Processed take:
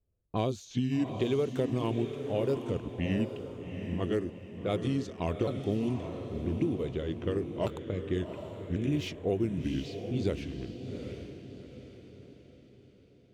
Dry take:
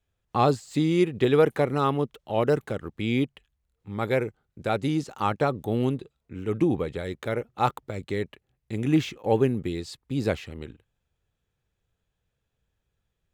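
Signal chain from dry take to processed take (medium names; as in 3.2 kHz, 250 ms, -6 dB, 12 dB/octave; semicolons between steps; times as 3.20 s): sawtooth pitch modulation -4.5 st, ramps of 1095 ms; level-controlled noise filter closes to 900 Hz, open at -23 dBFS; high-order bell 1.2 kHz -8.5 dB; compression, threshold -26 dBFS, peak gain reduction 10.5 dB; echo that smears into a reverb 771 ms, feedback 43%, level -7.5 dB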